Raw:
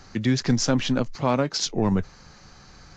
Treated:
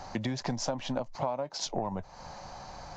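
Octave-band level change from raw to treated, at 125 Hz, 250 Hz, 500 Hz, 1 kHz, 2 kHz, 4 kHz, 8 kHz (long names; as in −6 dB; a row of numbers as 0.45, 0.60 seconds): −12.5, −13.0, −7.5, −5.0, −11.0, −9.5, −9.5 decibels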